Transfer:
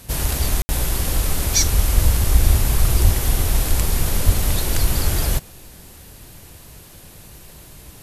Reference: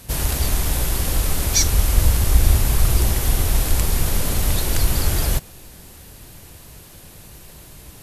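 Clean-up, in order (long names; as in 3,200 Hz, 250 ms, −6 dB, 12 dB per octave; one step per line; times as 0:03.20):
high-pass at the plosives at 0:03.03/0:04.25
ambience match 0:00.62–0:00.69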